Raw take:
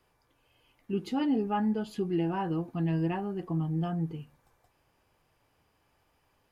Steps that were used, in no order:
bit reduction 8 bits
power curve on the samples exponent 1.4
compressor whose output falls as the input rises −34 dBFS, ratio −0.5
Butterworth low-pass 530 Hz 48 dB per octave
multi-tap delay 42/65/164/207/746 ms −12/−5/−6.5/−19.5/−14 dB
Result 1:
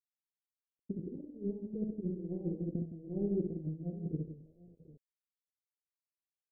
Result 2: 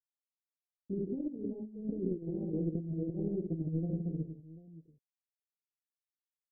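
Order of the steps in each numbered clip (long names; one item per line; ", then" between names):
compressor whose output falls as the input rises, then multi-tap delay, then bit reduction, then power curve on the samples, then Butterworth low-pass
bit reduction, then multi-tap delay, then power curve on the samples, then compressor whose output falls as the input rises, then Butterworth low-pass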